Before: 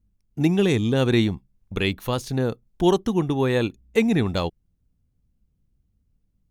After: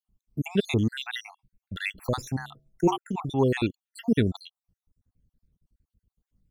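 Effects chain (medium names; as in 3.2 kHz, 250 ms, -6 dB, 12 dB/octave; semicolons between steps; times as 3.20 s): random holes in the spectrogram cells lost 69%; 2.32–2.98 s: de-hum 71.57 Hz, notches 9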